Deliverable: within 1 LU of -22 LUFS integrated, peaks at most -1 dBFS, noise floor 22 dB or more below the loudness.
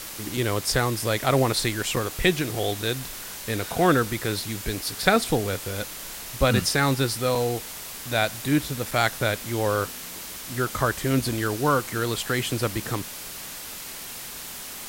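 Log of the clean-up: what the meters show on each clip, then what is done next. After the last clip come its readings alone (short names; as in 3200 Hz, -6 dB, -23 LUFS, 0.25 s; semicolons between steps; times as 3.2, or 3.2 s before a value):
dropouts 4; longest dropout 3.8 ms; noise floor -38 dBFS; noise floor target -48 dBFS; loudness -25.5 LUFS; peak -3.0 dBFS; loudness target -22.0 LUFS
-> interpolate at 0.37/1.96/7.35/8.91, 3.8 ms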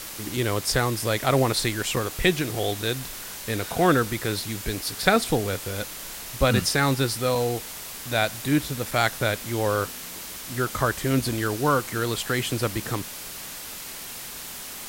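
dropouts 0; noise floor -38 dBFS; noise floor target -48 dBFS
-> denoiser 10 dB, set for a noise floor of -38 dBFS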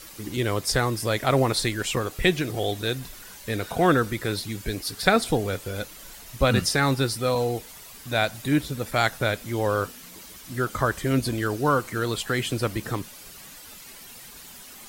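noise floor -45 dBFS; noise floor target -47 dBFS
-> denoiser 6 dB, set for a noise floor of -45 dBFS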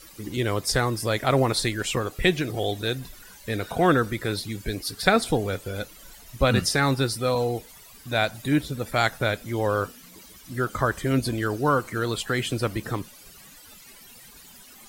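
noise floor -49 dBFS; loudness -25.5 LUFS; peak -3.5 dBFS; loudness target -22.0 LUFS
-> gain +3.5 dB; limiter -1 dBFS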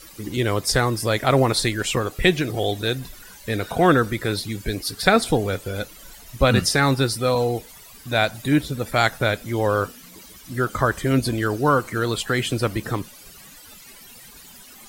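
loudness -22.0 LUFS; peak -1.0 dBFS; noise floor -45 dBFS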